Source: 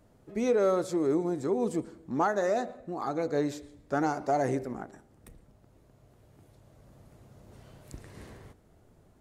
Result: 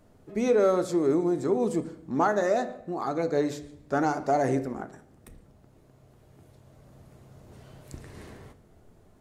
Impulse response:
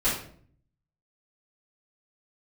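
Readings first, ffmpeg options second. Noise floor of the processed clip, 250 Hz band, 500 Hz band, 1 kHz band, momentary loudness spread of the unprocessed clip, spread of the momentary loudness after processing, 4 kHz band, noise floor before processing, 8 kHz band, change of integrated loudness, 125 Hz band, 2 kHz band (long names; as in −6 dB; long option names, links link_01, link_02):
−58 dBFS, +3.0 dB, +3.0 dB, +3.0 dB, 21 LU, 19 LU, +2.5 dB, −62 dBFS, +2.5 dB, +3.0 dB, +3.0 dB, +3.0 dB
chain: -filter_complex "[0:a]asplit=2[link_01][link_02];[1:a]atrim=start_sample=2205,lowpass=8500[link_03];[link_02][link_03]afir=irnorm=-1:irlink=0,volume=-21.5dB[link_04];[link_01][link_04]amix=inputs=2:normalize=0,volume=2dB"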